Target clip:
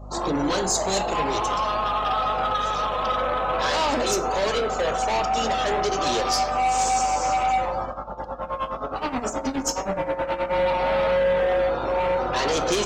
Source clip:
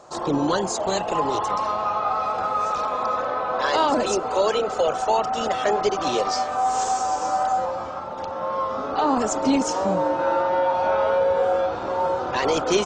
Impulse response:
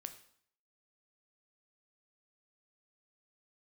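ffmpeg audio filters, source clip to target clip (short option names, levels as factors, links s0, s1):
-filter_complex "[0:a]asoftclip=type=hard:threshold=0.075,aeval=exprs='val(0)+0.0126*(sin(2*PI*50*n/s)+sin(2*PI*2*50*n/s)/2+sin(2*PI*3*50*n/s)/3+sin(2*PI*4*50*n/s)/4+sin(2*PI*5*50*n/s)/5)':c=same,asplit=3[s0][s1][s2];[s0]afade=t=out:st=7.85:d=0.02[s3];[s1]tremolo=f=9.5:d=0.89,afade=t=in:st=7.85:d=0.02,afade=t=out:st=10.5:d=0.02[s4];[s2]afade=t=in:st=10.5:d=0.02[s5];[s3][s4][s5]amix=inputs=3:normalize=0[s6];[1:a]atrim=start_sample=2205[s7];[s6][s7]afir=irnorm=-1:irlink=0,afftdn=nr=17:nf=-49,adynamicequalizer=threshold=0.00398:dfrequency=2800:dqfactor=0.7:tfrequency=2800:tqfactor=0.7:attack=5:release=100:ratio=0.375:range=3:mode=boostabove:tftype=highshelf,volume=1.88"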